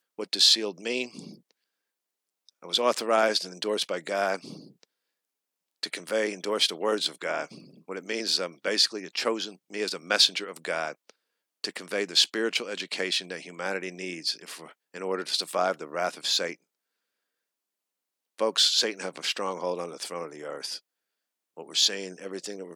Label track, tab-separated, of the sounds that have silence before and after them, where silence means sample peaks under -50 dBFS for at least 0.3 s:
2.490000	4.840000	sound
5.830000	11.100000	sound
11.640000	16.550000	sound
18.380000	20.790000	sound